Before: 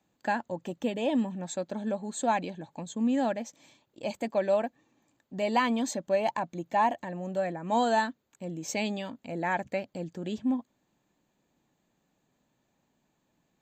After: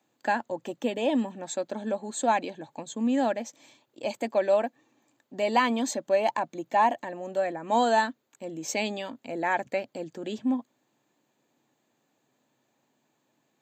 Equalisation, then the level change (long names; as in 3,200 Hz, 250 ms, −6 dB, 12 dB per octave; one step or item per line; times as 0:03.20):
high-pass filter 130 Hz 24 dB per octave
parametric band 180 Hz −13.5 dB 0.32 octaves
+3.0 dB